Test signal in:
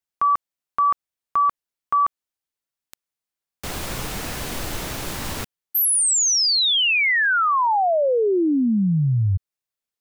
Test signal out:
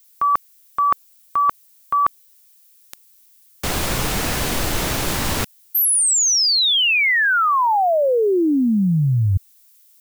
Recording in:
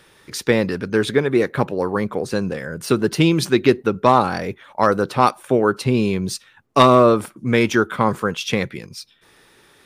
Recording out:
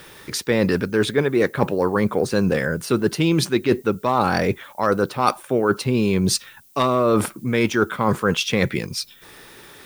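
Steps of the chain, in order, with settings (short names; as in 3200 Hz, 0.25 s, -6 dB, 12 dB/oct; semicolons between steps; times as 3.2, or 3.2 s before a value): reverse; compressor 10:1, threshold -23 dBFS; reverse; added noise violet -61 dBFS; gain +8 dB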